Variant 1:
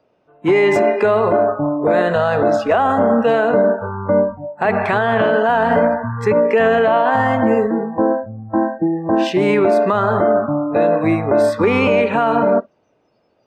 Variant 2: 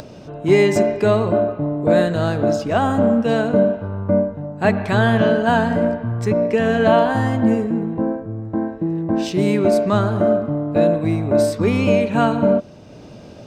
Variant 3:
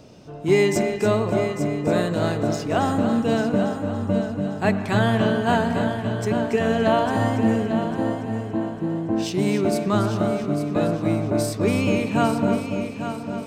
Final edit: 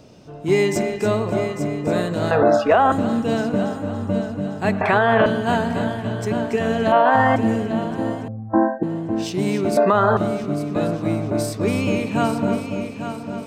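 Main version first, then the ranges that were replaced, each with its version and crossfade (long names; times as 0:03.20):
3
0:02.31–0:02.92: punch in from 1
0:04.81–0:05.26: punch in from 1
0:06.92–0:07.36: punch in from 1
0:08.28–0:08.83: punch in from 1
0:09.77–0:10.17: punch in from 1
not used: 2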